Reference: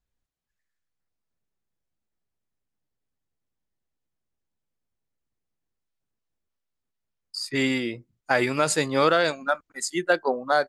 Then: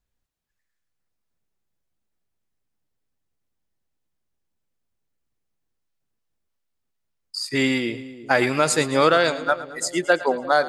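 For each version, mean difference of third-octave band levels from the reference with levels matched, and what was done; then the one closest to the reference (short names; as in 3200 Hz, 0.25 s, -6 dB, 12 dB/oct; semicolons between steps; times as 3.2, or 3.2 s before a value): 3.5 dB: split-band echo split 660 Hz, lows 0.349 s, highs 0.111 s, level -15 dB; gain +3 dB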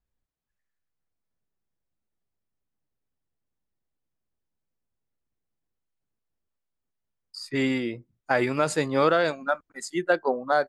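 2.0 dB: high shelf 2500 Hz -8.5 dB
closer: second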